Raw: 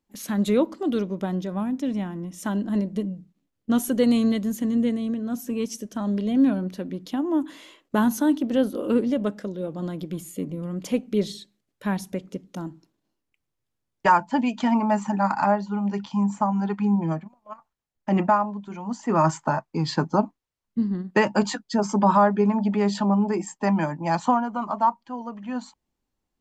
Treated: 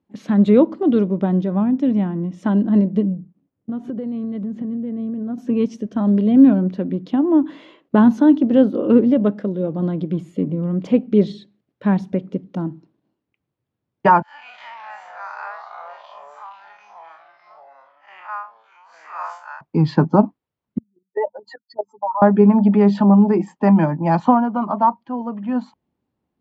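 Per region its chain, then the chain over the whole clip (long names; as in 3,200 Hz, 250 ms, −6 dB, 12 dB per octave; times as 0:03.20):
0:03.13–0:05.38: low-pass filter 1,400 Hz 6 dB per octave + downward compressor 20 to 1, threshold −31 dBFS
0:14.22–0:19.61: spectrum smeared in time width 108 ms + high-pass filter 1,300 Hz 24 dB per octave + delay with pitch and tempo change per echo 123 ms, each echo −3 semitones, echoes 2, each echo −6 dB
0:20.78–0:22.22: expanding power law on the bin magnitudes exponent 2.9 + Butterworth high-pass 470 Hz + output level in coarse steps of 13 dB
whole clip: Chebyshev band-pass filter 110–3,500 Hz, order 2; tilt shelving filter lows +6.5 dB, about 1,300 Hz; level +3.5 dB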